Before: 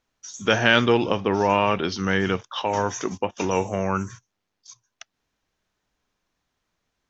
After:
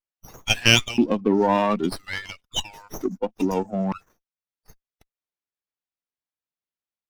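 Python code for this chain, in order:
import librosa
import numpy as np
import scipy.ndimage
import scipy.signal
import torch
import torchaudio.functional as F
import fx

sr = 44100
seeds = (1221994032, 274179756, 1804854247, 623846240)

p1 = fx.bin_expand(x, sr, power=2.0)
p2 = fx.high_shelf(p1, sr, hz=3400.0, db=-6.0, at=(3.54, 4.02))
p3 = fx.level_steps(p2, sr, step_db=18)
p4 = p2 + F.gain(torch.from_numpy(p3), 0.0).numpy()
p5 = fx.filter_lfo_highpass(p4, sr, shape='square', hz=0.51, low_hz=230.0, high_hz=2700.0, q=4.0)
y = fx.running_max(p5, sr, window=5)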